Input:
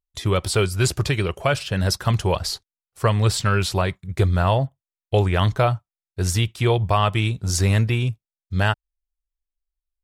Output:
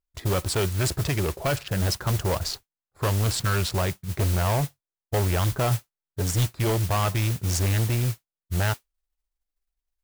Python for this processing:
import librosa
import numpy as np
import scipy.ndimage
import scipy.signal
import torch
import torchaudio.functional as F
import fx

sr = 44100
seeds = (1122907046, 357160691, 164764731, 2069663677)

y = fx.wiener(x, sr, points=15)
y = 10.0 ** (-21.0 / 20.0) * np.tanh(y / 10.0 ** (-21.0 / 20.0))
y = fx.comb(y, sr, ms=7.0, depth=0.54, at=(5.7, 6.47))
y = fx.mod_noise(y, sr, seeds[0], snr_db=13)
y = fx.record_warp(y, sr, rpm=33.33, depth_cents=100.0)
y = y * librosa.db_to_amplitude(1.0)